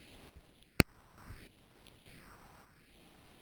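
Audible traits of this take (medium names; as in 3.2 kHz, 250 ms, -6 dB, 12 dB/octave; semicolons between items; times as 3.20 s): phasing stages 4, 0.7 Hz, lowest notch 430–2100 Hz; aliases and images of a low sample rate 6.9 kHz, jitter 0%; random-step tremolo 3.4 Hz, depth 75%; Opus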